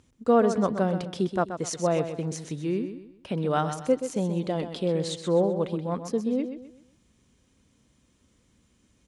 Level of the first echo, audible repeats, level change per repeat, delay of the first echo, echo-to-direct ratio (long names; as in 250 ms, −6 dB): −9.5 dB, 3, −9.5 dB, 128 ms, −9.0 dB